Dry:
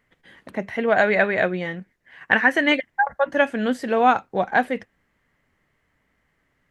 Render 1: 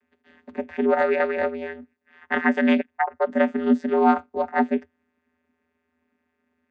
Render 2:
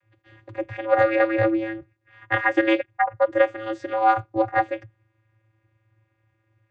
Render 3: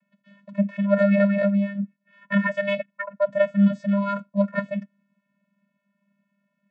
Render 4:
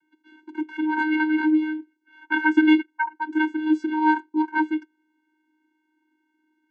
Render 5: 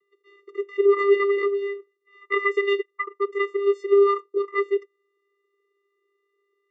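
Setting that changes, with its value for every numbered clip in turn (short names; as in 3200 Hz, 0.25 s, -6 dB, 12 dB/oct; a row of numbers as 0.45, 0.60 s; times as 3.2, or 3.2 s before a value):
vocoder, frequency: 82, 110, 200, 310, 400 Hz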